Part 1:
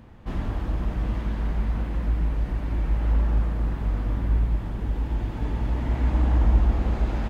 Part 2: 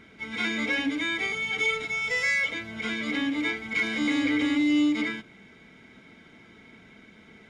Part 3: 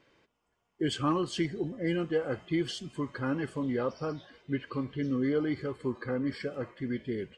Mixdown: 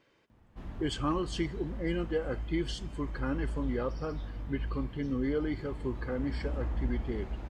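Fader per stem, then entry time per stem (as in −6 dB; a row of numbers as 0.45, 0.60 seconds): −14.0 dB, muted, −2.5 dB; 0.30 s, muted, 0.00 s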